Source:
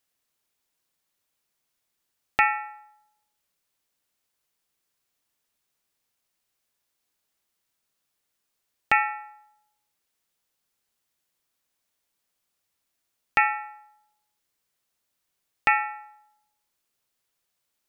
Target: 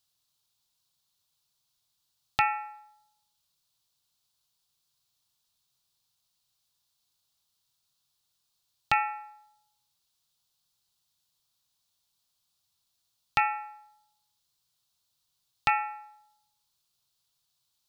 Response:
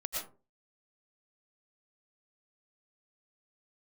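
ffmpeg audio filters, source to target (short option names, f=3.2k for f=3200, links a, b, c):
-filter_complex "[0:a]equalizer=f=125:t=o:w=1:g=8,equalizer=f=250:t=o:w=1:g=-7,equalizer=f=500:t=o:w=1:g=-8,equalizer=f=1k:t=o:w=1:g=3,equalizer=f=2k:t=o:w=1:g=-12,equalizer=f=4k:t=o:w=1:g=10,asplit=2[a][b];[1:a]atrim=start_sample=2205,atrim=end_sample=3087,adelay=22[c];[b][c]afir=irnorm=-1:irlink=0,volume=-20dB[d];[a][d]amix=inputs=2:normalize=0"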